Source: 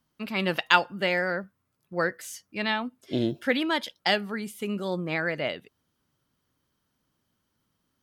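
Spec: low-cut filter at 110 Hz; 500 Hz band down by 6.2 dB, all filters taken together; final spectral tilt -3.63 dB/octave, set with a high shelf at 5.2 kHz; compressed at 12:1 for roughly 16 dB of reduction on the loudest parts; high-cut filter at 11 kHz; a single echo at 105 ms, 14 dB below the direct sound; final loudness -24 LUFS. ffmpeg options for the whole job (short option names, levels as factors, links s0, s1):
-af "highpass=110,lowpass=11000,equalizer=f=500:t=o:g=-8,highshelf=f=5200:g=4,acompressor=threshold=0.0316:ratio=12,aecho=1:1:105:0.2,volume=3.76"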